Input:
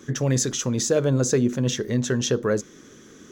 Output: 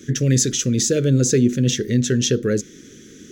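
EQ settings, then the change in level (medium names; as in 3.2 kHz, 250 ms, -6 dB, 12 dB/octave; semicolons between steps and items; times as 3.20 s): Butterworth band-stop 890 Hz, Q 0.65; +5.5 dB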